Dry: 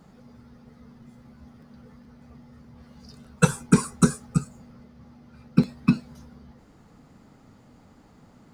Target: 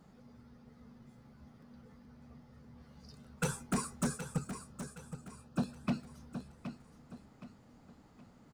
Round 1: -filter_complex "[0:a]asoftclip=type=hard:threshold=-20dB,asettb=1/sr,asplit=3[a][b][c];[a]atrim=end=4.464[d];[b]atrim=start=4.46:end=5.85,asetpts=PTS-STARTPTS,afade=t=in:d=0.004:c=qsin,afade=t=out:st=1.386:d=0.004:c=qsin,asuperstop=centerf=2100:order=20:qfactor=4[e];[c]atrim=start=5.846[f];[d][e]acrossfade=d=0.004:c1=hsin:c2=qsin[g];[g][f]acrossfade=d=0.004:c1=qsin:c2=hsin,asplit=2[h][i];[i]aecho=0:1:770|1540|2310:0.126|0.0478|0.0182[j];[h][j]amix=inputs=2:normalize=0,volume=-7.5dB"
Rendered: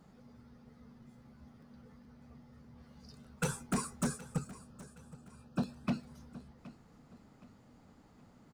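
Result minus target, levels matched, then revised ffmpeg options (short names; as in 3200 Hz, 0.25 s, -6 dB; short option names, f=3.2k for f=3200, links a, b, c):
echo-to-direct -8 dB
-filter_complex "[0:a]asoftclip=type=hard:threshold=-20dB,asettb=1/sr,asplit=3[a][b][c];[a]atrim=end=4.464[d];[b]atrim=start=4.46:end=5.85,asetpts=PTS-STARTPTS,afade=t=in:d=0.004:c=qsin,afade=t=out:st=1.386:d=0.004:c=qsin,asuperstop=centerf=2100:order=20:qfactor=4[e];[c]atrim=start=5.846[f];[d][e]acrossfade=d=0.004:c1=hsin:c2=qsin[g];[g][f]acrossfade=d=0.004:c1=qsin:c2=hsin,asplit=2[h][i];[i]aecho=0:1:770|1540|2310|3080:0.316|0.12|0.0457|0.0174[j];[h][j]amix=inputs=2:normalize=0,volume=-7.5dB"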